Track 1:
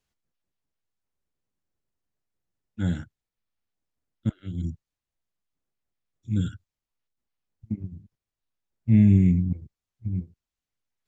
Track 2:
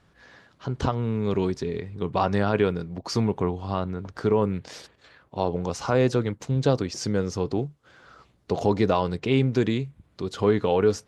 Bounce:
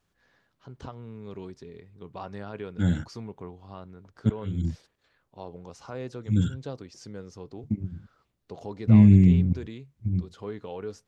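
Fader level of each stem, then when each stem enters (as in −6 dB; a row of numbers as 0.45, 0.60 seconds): +2.0, −15.5 decibels; 0.00, 0.00 seconds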